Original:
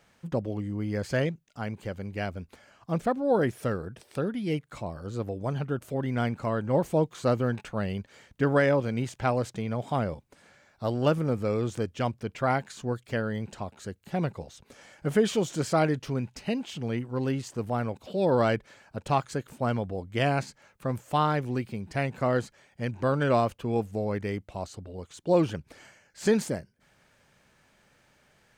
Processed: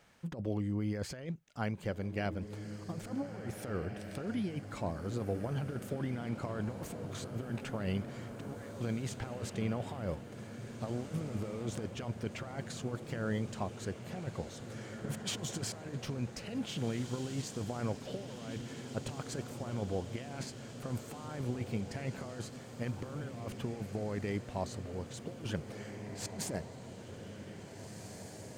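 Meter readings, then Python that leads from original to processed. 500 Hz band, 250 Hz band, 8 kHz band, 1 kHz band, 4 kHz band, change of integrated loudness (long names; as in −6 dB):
−13.0 dB, −8.0 dB, −1.0 dB, −14.5 dB, −4.5 dB, −10.5 dB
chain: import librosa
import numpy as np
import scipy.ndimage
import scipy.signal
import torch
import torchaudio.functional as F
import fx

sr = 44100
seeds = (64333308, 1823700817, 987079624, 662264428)

p1 = fx.over_compress(x, sr, threshold_db=-31.0, ratio=-0.5)
p2 = p1 + fx.echo_diffused(p1, sr, ms=1860, feedback_pct=65, wet_db=-8.5, dry=0)
y = p2 * librosa.db_to_amplitude(-6.0)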